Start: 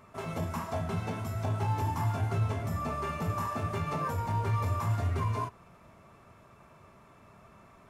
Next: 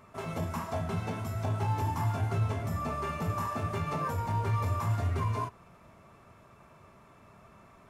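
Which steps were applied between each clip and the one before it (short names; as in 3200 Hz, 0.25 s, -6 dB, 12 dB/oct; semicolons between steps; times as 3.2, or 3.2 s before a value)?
nothing audible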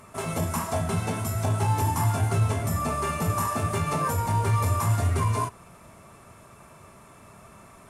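bell 9500 Hz +14.5 dB 0.97 oct; gain +6 dB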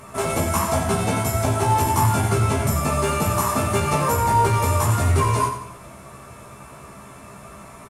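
in parallel at -12 dB: soft clip -23.5 dBFS, distortion -13 dB; on the sum: doubler 15 ms -3 dB; feedback echo 90 ms, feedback 43%, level -9 dB; gain +4 dB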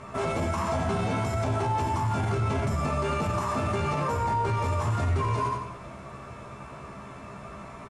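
limiter -18.5 dBFS, peak gain reduction 10.5 dB; air absorption 110 m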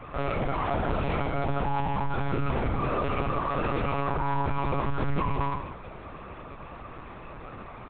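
monotone LPC vocoder at 8 kHz 140 Hz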